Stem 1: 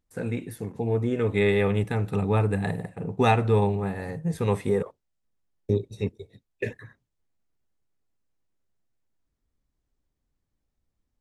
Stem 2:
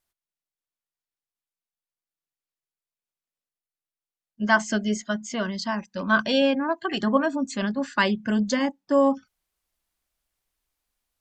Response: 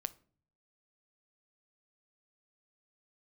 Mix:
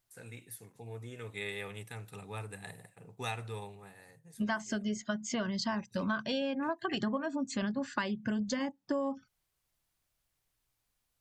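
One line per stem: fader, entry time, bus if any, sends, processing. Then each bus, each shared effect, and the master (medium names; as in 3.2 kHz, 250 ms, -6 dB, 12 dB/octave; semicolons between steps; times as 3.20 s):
-15.5 dB, 0.00 s, no send, tilt EQ +4.5 dB/octave; auto duck -8 dB, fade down 0.95 s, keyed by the second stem
-1.0 dB, 0.00 s, no send, none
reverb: none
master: peaking EQ 120 Hz +14.5 dB 0.51 oct; compression 12:1, threshold -30 dBFS, peak gain reduction 16 dB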